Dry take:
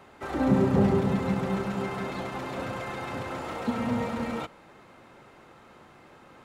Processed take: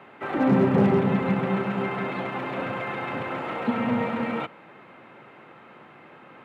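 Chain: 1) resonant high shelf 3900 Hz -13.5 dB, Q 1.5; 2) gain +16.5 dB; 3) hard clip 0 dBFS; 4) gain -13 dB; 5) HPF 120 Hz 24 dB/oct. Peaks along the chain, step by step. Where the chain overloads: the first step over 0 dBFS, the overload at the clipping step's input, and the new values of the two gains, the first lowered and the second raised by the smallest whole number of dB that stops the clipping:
-9.0, +7.5, 0.0, -13.0, -8.5 dBFS; step 2, 7.5 dB; step 2 +8.5 dB, step 4 -5 dB

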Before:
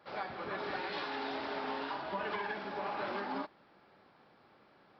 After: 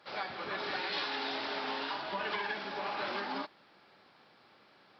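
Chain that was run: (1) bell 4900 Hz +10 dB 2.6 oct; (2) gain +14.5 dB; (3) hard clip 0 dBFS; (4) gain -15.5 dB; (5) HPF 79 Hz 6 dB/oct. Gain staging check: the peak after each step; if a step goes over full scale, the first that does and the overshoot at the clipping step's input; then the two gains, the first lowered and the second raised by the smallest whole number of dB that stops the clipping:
-20.5, -6.0, -6.0, -21.5, -21.5 dBFS; no overload

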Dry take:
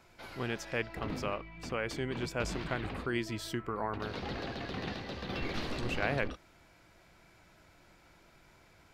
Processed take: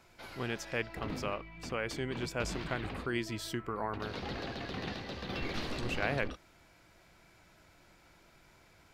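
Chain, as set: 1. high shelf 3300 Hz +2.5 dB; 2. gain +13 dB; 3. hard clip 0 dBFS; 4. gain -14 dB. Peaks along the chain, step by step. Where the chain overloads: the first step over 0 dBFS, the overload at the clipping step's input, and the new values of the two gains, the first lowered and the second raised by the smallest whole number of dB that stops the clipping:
-16.5, -3.5, -3.5, -17.5 dBFS; no overload

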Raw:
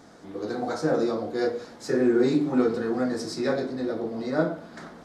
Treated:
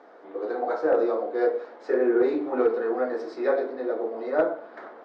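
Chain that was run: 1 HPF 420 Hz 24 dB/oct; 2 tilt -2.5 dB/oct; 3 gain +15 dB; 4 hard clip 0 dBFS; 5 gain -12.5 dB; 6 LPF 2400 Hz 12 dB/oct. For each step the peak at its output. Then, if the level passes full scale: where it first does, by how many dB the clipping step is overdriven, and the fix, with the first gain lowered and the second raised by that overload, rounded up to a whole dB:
-13.0, -11.0, +4.0, 0.0, -12.5, -12.0 dBFS; step 3, 4.0 dB; step 3 +11 dB, step 5 -8.5 dB

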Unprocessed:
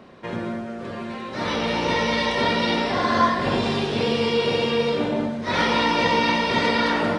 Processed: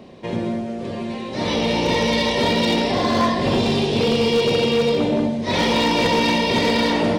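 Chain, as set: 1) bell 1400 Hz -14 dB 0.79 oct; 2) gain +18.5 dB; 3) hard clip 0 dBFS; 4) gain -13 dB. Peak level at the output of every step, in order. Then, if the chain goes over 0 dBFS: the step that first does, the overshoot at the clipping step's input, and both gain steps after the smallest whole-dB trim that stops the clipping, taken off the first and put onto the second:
-9.0, +9.5, 0.0, -13.0 dBFS; step 2, 9.5 dB; step 2 +8.5 dB, step 4 -3 dB

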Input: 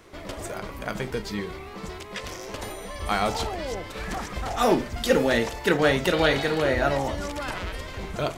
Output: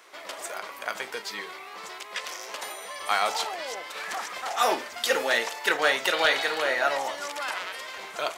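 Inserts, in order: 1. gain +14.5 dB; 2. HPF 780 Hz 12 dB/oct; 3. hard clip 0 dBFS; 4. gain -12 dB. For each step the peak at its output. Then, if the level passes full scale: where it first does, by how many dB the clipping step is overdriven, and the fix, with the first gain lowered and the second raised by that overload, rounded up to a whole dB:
+7.5, +6.0, 0.0, -12.0 dBFS; step 1, 6.0 dB; step 1 +8.5 dB, step 4 -6 dB

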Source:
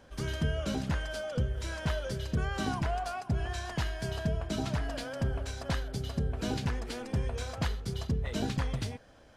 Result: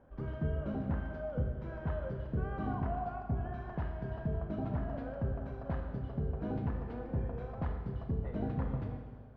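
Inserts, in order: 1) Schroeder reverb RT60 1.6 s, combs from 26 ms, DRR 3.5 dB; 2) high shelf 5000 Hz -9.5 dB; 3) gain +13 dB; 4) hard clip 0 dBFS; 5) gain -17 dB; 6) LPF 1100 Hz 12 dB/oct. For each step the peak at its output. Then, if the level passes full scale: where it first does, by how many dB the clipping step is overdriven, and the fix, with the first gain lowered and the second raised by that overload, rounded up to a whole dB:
-17.5, -17.5, -4.5, -4.5, -21.5, -22.5 dBFS; no overload

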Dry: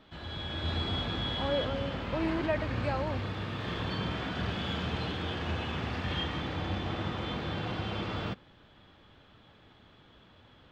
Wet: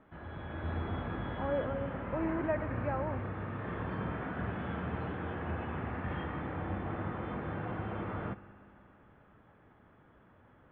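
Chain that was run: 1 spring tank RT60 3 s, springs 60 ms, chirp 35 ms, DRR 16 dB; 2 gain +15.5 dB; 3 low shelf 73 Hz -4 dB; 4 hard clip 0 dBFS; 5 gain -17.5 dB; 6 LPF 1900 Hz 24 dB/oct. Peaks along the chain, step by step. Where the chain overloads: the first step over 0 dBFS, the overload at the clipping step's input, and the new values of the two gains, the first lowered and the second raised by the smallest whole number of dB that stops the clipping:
-18.0, -2.5, -2.5, -2.5, -20.0, -20.5 dBFS; no overload

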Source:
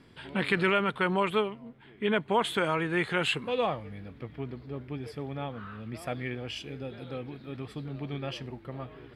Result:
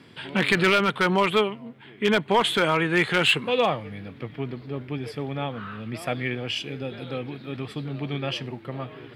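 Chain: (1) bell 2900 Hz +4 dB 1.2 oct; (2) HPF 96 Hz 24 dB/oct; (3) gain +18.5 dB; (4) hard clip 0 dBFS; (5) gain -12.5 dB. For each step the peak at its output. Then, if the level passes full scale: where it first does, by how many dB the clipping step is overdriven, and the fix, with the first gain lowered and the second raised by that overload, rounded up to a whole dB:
-9.5, -10.0, +8.5, 0.0, -12.5 dBFS; step 3, 8.5 dB; step 3 +9.5 dB, step 5 -3.5 dB

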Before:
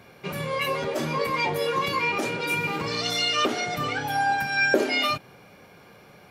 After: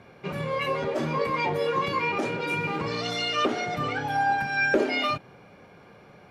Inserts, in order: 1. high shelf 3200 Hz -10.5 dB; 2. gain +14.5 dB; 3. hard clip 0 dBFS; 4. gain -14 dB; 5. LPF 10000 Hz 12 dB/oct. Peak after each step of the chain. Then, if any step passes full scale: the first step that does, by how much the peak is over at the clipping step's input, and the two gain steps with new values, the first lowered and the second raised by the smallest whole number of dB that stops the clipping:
-7.0, +7.5, 0.0, -14.0, -14.0 dBFS; step 2, 7.5 dB; step 2 +6.5 dB, step 4 -6 dB

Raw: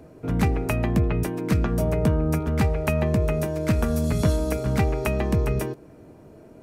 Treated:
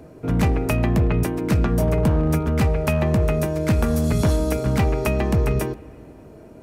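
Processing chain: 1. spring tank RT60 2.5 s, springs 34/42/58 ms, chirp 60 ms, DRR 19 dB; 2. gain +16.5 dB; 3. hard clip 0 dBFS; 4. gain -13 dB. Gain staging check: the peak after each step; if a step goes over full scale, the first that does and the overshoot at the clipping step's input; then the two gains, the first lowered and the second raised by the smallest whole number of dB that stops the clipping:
-8.5, +8.0, 0.0, -13.0 dBFS; step 2, 8.0 dB; step 2 +8.5 dB, step 4 -5 dB

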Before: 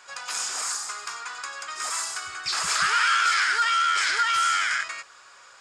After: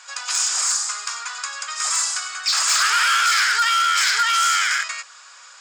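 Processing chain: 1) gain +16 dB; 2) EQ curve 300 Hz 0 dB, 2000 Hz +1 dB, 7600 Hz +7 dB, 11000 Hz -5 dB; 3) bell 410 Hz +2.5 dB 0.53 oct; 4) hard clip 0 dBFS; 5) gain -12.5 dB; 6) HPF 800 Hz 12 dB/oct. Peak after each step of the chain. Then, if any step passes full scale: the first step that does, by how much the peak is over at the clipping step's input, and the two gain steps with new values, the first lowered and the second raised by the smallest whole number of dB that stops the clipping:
+5.5, +7.5, +7.5, 0.0, -12.5, -8.5 dBFS; step 1, 7.5 dB; step 1 +8 dB, step 5 -4.5 dB

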